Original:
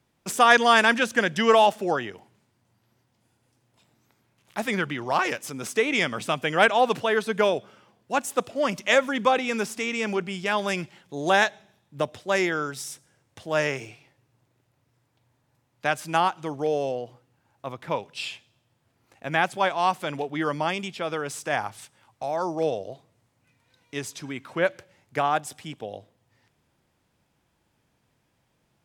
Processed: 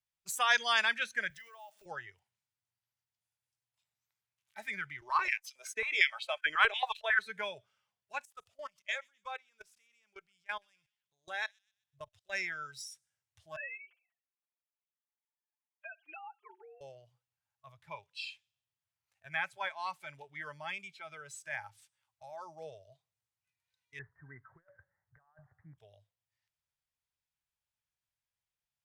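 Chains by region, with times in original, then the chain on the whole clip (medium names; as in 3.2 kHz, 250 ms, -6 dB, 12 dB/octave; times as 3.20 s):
1.30–1.86 s: block-companded coder 5-bit + high-pass 180 Hz + compression 12:1, threshold -31 dBFS
5.01–7.19 s: gate -39 dBFS, range -19 dB + step-sequenced high-pass 11 Hz 290–3000 Hz
8.25–12.33 s: level held to a coarse grid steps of 24 dB + feedback echo behind a high-pass 126 ms, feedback 39%, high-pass 3 kHz, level -17 dB
13.56–16.81 s: formants replaced by sine waves + comb 5.8 ms, depth 86% + compression, threshold -27 dBFS
23.99–25.78 s: steep low-pass 1.9 kHz 96 dB/octave + compressor with a negative ratio -32 dBFS, ratio -0.5
whole clip: spectral noise reduction 14 dB; amplifier tone stack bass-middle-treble 10-0-10; trim -3.5 dB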